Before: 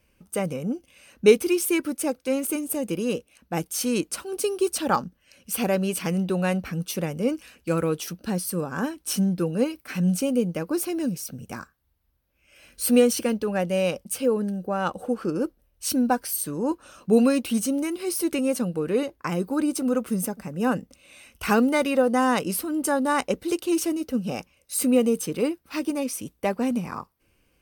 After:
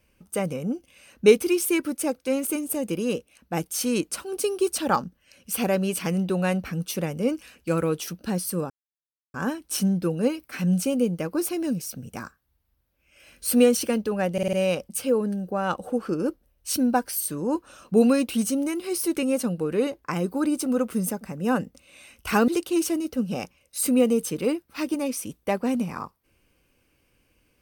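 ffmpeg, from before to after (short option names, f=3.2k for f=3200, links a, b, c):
-filter_complex "[0:a]asplit=7[a][b][c][d][e][f][g];[a]atrim=end=8.7,asetpts=PTS-STARTPTS,afade=t=out:st=8.696:d=0.004:c=hsin,apad=pad_dur=0.64[h];[b]atrim=start=8.7:end=13.742,asetpts=PTS-STARTPTS,afade=t=in:d=0.004:c=hsin[i];[c]atrim=start=13.688:end=13.742[j];[d]atrim=start=13.688:end=13.742[k];[e]atrim=start=13.688:end=13.742[l];[f]atrim=start=13.688:end=21.642[m];[g]atrim=start=23.438[n];[h][i]concat=n=2:v=0:a=1[o];[o][j]acrossfade=d=0.004:c1=hsin:c2=hsin[p];[p][k]acrossfade=d=0.004:c1=hsin:c2=hsin[q];[q][l]acrossfade=d=0.004:c1=hsin:c2=hsin[r];[r][m]acrossfade=d=0.004:c1=hsin:c2=hsin[s];[s][n]acrossfade=d=0.004:c1=hsin:c2=hsin"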